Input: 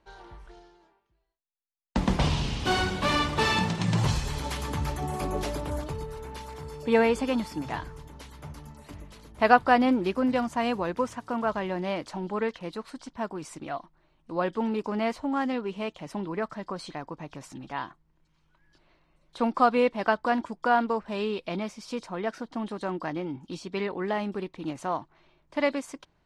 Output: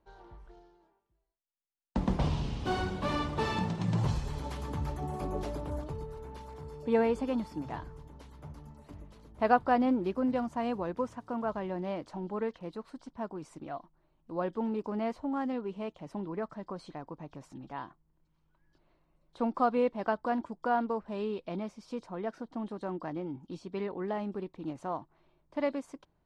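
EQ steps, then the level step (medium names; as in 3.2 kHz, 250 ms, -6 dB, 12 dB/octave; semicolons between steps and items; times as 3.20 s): peaking EQ 2.1 kHz -5.5 dB 1.7 oct; treble shelf 3.7 kHz -11 dB; -4.0 dB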